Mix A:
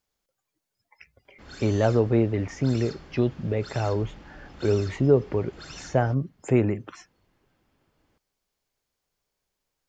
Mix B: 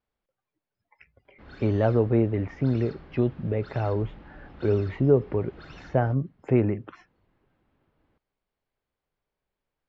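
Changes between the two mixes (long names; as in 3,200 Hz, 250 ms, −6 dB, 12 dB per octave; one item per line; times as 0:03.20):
background: remove notch filter 3,900 Hz, Q 20
master: add high-frequency loss of the air 340 metres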